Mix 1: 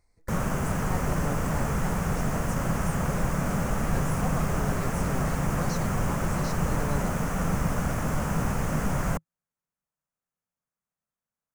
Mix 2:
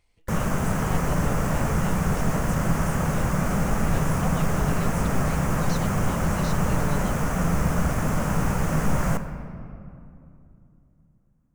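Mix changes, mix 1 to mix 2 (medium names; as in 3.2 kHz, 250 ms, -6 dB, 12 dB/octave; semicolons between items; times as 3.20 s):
speech: remove Butterworth band-stop 3 kHz, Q 1.3; reverb: on, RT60 2.7 s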